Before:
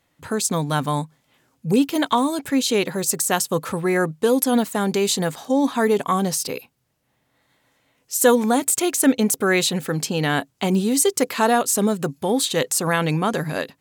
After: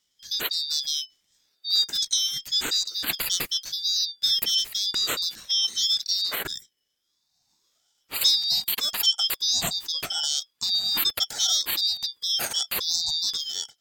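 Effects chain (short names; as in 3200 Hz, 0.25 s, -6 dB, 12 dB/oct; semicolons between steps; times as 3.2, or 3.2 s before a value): band-swap scrambler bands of 4000 Hz; high-pass sweep 870 Hz -> 280 Hz, 6.61–7.37; ring modulator with a swept carrier 780 Hz, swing 45%, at 0.88 Hz; gain -3 dB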